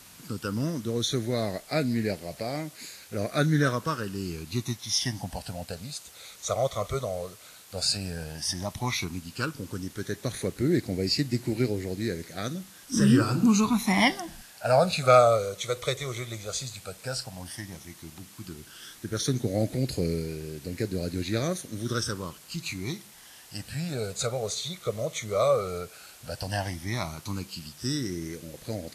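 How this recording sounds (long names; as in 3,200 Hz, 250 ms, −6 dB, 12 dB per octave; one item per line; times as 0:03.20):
phaser sweep stages 12, 0.11 Hz, lowest notch 280–1,100 Hz
a quantiser's noise floor 8 bits, dither triangular
Ogg Vorbis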